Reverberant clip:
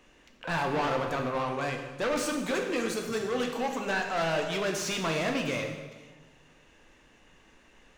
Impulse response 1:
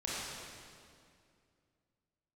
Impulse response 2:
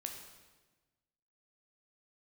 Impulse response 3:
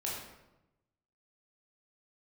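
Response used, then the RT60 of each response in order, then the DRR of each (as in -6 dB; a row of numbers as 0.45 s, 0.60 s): 2; 2.3 s, 1.3 s, 0.95 s; -7.5 dB, 2.5 dB, -5.0 dB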